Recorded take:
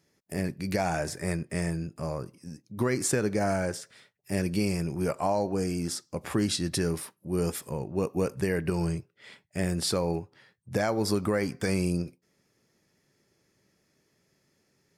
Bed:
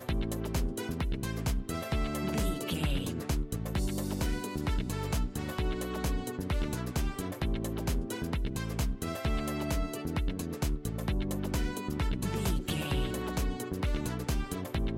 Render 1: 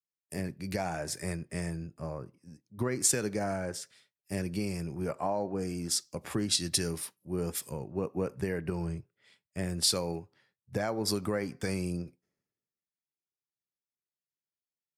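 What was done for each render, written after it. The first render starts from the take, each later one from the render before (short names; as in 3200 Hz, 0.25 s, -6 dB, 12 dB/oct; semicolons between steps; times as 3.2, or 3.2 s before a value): compressor 2.5:1, threshold -32 dBFS, peak gain reduction 7.5 dB; three-band expander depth 100%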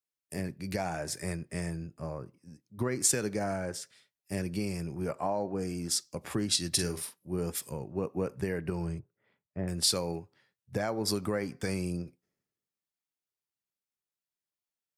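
6.69–7.37 doubler 45 ms -9.5 dB; 8.99–9.68 LPF 1200 Hz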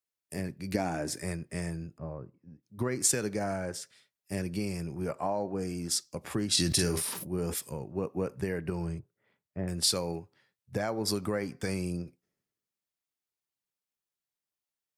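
0.74–1.2 bell 280 Hz +11.5 dB 0.74 oct; 1.98–2.63 tape spacing loss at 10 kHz 43 dB; 6.5–7.58 sustainer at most 29 dB/s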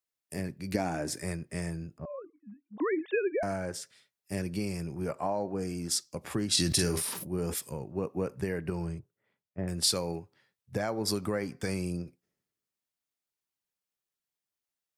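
2.05–3.43 sine-wave speech; 8.77–9.58 fade out, to -9 dB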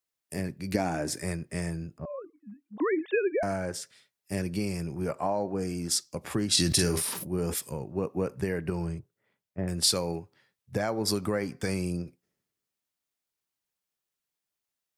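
gain +2.5 dB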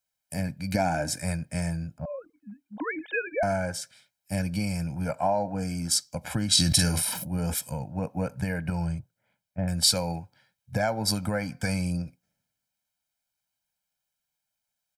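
comb 1.3 ms, depth 95%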